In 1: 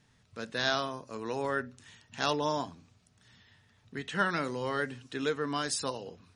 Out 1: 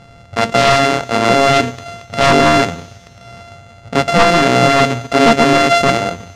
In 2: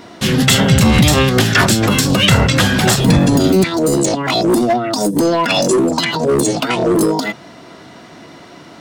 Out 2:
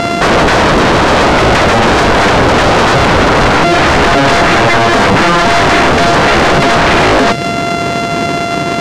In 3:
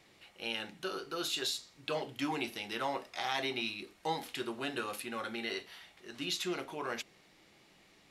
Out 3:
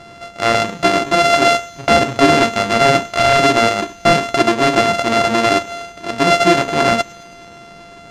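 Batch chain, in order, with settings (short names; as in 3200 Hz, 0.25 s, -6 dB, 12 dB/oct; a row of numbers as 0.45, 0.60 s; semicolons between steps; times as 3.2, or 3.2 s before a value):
sample sorter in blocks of 64 samples; compressor 6:1, threshold -19 dBFS; dynamic EQ 1000 Hz, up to -7 dB, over -40 dBFS, Q 1.6; wavefolder -27.5 dBFS; air absorption 92 m; thin delay 0.109 s, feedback 72%, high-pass 3200 Hz, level -19.5 dB; normalise peaks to -2 dBFS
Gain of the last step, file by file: +25.5, +25.0, +25.5 dB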